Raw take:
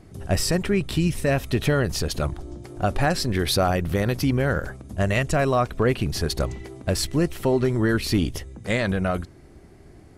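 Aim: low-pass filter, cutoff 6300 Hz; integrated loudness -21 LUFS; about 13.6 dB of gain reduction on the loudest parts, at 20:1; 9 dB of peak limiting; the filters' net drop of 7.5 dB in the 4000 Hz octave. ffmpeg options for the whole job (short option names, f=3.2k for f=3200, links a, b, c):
-af "lowpass=6.3k,equalizer=f=4k:t=o:g=-8.5,acompressor=threshold=-30dB:ratio=20,volume=18.5dB,alimiter=limit=-10dB:level=0:latency=1"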